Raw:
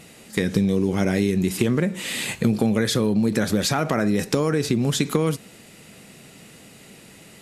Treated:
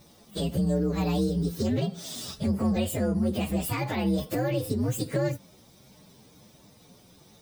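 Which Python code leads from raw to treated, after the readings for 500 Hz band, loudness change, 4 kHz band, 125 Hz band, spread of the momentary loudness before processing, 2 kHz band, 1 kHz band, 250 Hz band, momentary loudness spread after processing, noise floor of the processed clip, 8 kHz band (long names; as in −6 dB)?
−6.5 dB, −6.0 dB, −9.5 dB, −4.0 dB, 5 LU, −11.0 dB, −6.0 dB, −6.0 dB, 6 LU, −56 dBFS, −9.0 dB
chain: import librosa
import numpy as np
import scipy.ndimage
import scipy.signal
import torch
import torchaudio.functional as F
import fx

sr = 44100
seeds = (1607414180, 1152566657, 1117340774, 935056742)

y = fx.partial_stretch(x, sr, pct=130)
y = y * 10.0 ** (-3.5 / 20.0)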